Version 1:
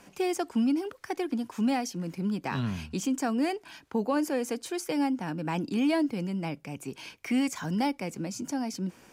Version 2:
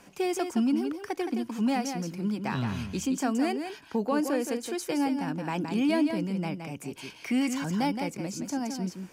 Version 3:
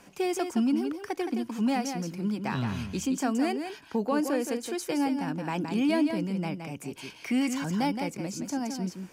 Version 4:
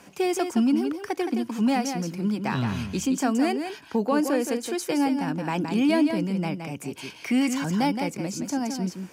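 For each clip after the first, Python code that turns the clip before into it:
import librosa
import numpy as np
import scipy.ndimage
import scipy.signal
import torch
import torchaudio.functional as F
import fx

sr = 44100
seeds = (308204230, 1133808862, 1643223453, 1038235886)

y1 = x + 10.0 ** (-7.0 / 20.0) * np.pad(x, (int(169 * sr / 1000.0), 0))[:len(x)]
y2 = y1
y3 = scipy.signal.sosfilt(scipy.signal.butter(2, 64.0, 'highpass', fs=sr, output='sos'), y2)
y3 = y3 * 10.0 ** (4.0 / 20.0)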